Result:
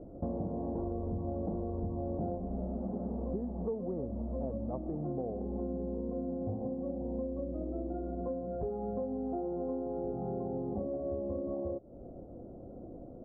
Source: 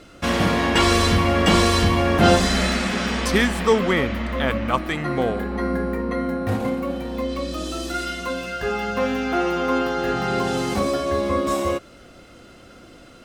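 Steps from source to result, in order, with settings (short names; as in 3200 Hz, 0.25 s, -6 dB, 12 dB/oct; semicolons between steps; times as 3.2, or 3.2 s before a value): steep low-pass 730 Hz 36 dB/oct; compressor 10:1, threshold -33 dBFS, peak gain reduction 21.5 dB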